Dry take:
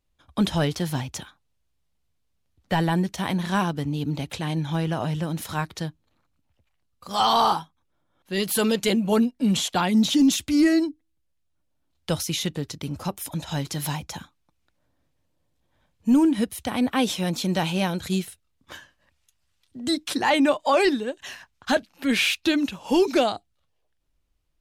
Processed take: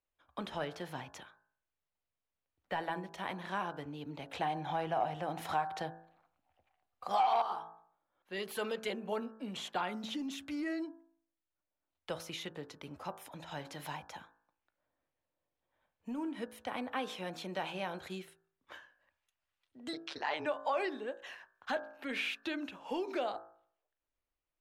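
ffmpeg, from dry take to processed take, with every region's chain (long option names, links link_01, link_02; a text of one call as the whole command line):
ffmpeg -i in.wav -filter_complex "[0:a]asettb=1/sr,asplit=3[link_01][link_02][link_03];[link_01]atrim=end=4.354[link_04];[link_02]atrim=start=4.35:end=7.42,asetpts=PTS-STARTPTS,afade=type=in:duration=0.004:curve=qsin,afade=type=out:start_time=3.066:duration=0.004:curve=qsin,equalizer=frequency=750:width_type=o:width=0.32:gain=13.5,acontrast=87[link_05];[link_03]atrim=start=7.416[link_06];[link_04][link_05]acrossfade=duration=0.004:curve1=hsin:curve2=qsin[link_07];[link_07][link_06]acrossfade=duration=0.004:curve1=qsin:curve2=hsin,asettb=1/sr,asplit=3[link_08][link_09][link_10];[link_08]atrim=end=19.934[link_11];[link_09]atrim=start=19.93:end=20.46,asetpts=PTS-STARTPTS,afade=type=in:duration=0.004:curve=qsin,afade=type=out:start_time=0.526:duration=0.004:curve=qsin,lowpass=frequency=5100:width_type=q:width=2.6,equalizer=frequency=110:width=0.48:gain=-7.5,tremolo=f=150:d=0.947[link_12];[link_10]atrim=start=20.456[link_13];[link_11][link_12]acrossfade=duration=0.004:curve1=hsin:curve2=qsin[link_14];[link_14][link_13]acrossfade=duration=0.004:curve1=qsin:curve2=hsin,bandreject=frequency=55.21:width_type=h:width=4,bandreject=frequency=110.42:width_type=h:width=4,bandreject=frequency=165.63:width_type=h:width=4,bandreject=frequency=220.84:width_type=h:width=4,bandreject=frequency=276.05:width_type=h:width=4,bandreject=frequency=331.26:width_type=h:width=4,bandreject=frequency=386.47:width_type=h:width=4,bandreject=frequency=441.68:width_type=h:width=4,bandreject=frequency=496.89:width_type=h:width=4,bandreject=frequency=552.1:width_type=h:width=4,bandreject=frequency=607.31:width_type=h:width=4,bandreject=frequency=662.52:width_type=h:width=4,bandreject=frequency=717.73:width_type=h:width=4,bandreject=frequency=772.94:width_type=h:width=4,bandreject=frequency=828.15:width_type=h:width=4,bandreject=frequency=883.36:width_type=h:width=4,bandreject=frequency=938.57:width_type=h:width=4,bandreject=frequency=993.78:width_type=h:width=4,bandreject=frequency=1048.99:width_type=h:width=4,bandreject=frequency=1104.2:width_type=h:width=4,bandreject=frequency=1159.41:width_type=h:width=4,bandreject=frequency=1214.62:width_type=h:width=4,bandreject=frequency=1269.83:width_type=h:width=4,bandreject=frequency=1325.04:width_type=h:width=4,bandreject=frequency=1380.25:width_type=h:width=4,bandreject=frequency=1435.46:width_type=h:width=4,bandreject=frequency=1490.67:width_type=h:width=4,bandreject=frequency=1545.88:width_type=h:width=4,bandreject=frequency=1601.09:width_type=h:width=4,bandreject=frequency=1656.3:width_type=h:width=4,bandreject=frequency=1711.51:width_type=h:width=4,bandreject=frequency=1766.72:width_type=h:width=4,acompressor=threshold=-22dB:ratio=4,acrossover=split=370 2900:gain=0.2 1 0.2[link_15][link_16][link_17];[link_15][link_16][link_17]amix=inputs=3:normalize=0,volume=-7dB" out.wav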